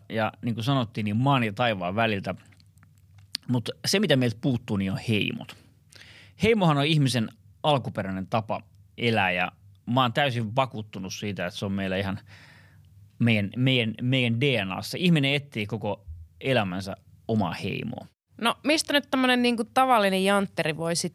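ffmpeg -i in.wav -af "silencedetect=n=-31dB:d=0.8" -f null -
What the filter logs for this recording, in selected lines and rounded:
silence_start: 2.33
silence_end: 3.35 | silence_duration: 1.02
silence_start: 12.16
silence_end: 13.21 | silence_duration: 1.04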